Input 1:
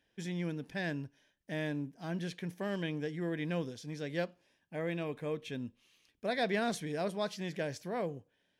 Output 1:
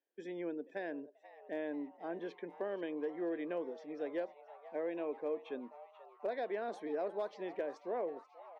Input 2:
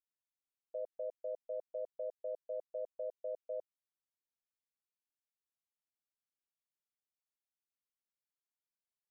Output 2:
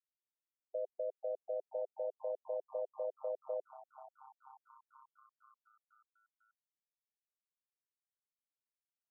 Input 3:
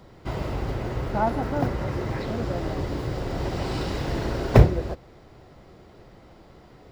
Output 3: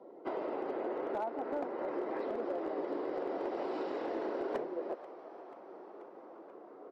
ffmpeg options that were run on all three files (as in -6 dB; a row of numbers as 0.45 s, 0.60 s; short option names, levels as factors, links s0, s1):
-filter_complex "[0:a]afftdn=nr=14:nf=-51,highpass=f=310:w=0.5412,highpass=f=310:w=1.3066,acompressor=threshold=0.0158:ratio=6,bandpass=f=420:t=q:w=0.63:csg=0,asoftclip=type=hard:threshold=0.0237,asplit=7[s0][s1][s2][s3][s4][s5][s6];[s1]adelay=485,afreqshift=140,volume=0.133[s7];[s2]adelay=970,afreqshift=280,volume=0.0841[s8];[s3]adelay=1455,afreqshift=420,volume=0.0531[s9];[s4]adelay=1940,afreqshift=560,volume=0.0335[s10];[s5]adelay=2425,afreqshift=700,volume=0.0209[s11];[s6]adelay=2910,afreqshift=840,volume=0.0132[s12];[s0][s7][s8][s9][s10][s11][s12]amix=inputs=7:normalize=0,volume=1.5"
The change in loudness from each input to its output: -3.5 LU, +2.0 LU, -11.5 LU